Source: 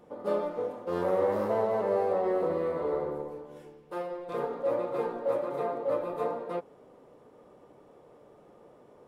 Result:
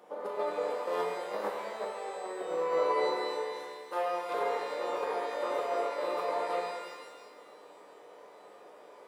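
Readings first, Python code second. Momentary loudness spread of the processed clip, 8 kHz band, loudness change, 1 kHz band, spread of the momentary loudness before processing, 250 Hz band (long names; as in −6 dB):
23 LU, can't be measured, −2.5 dB, +2.0 dB, 11 LU, −9.0 dB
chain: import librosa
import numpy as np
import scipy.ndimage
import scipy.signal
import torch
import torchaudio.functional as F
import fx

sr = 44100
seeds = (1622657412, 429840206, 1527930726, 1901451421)

y = scipy.signal.sosfilt(scipy.signal.butter(2, 510.0, 'highpass', fs=sr, output='sos'), x)
y = fx.over_compress(y, sr, threshold_db=-35.0, ratio=-0.5)
y = fx.rev_shimmer(y, sr, seeds[0], rt60_s=1.3, semitones=12, shimmer_db=-8, drr_db=0.5)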